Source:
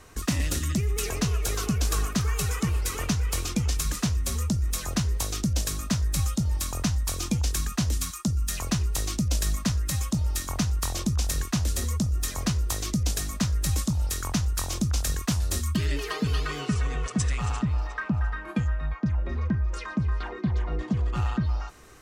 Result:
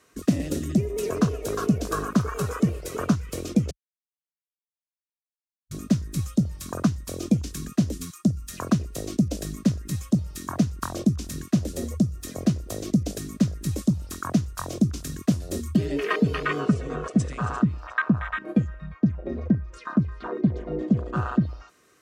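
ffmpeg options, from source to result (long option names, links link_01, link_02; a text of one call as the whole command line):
ffmpeg -i in.wav -filter_complex "[0:a]asplit=3[link_01][link_02][link_03];[link_01]atrim=end=3.71,asetpts=PTS-STARTPTS,afade=type=out:start_time=3.706:duration=0.004:curve=hsin[link_04];[link_02]atrim=start=3.71:end=5.71,asetpts=PTS-STARTPTS,volume=0[link_05];[link_03]atrim=start=5.71,asetpts=PTS-STARTPTS,afade=type=in:duration=0.004:curve=hsin[link_06];[link_04][link_05][link_06]concat=n=3:v=0:a=1,highpass=180,afwtdn=0.0224,equalizer=frequency=830:width=5.7:gain=-11.5,volume=9dB" out.wav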